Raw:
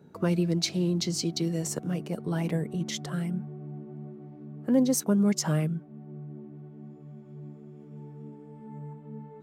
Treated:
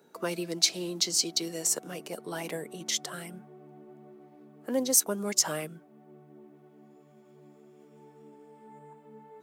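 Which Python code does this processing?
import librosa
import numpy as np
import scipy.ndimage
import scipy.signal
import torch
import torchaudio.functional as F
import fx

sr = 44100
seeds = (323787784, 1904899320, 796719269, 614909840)

y = scipy.signal.sosfilt(scipy.signal.butter(2, 420.0, 'highpass', fs=sr, output='sos'), x)
y = fx.high_shelf(y, sr, hz=4100.0, db=10.0)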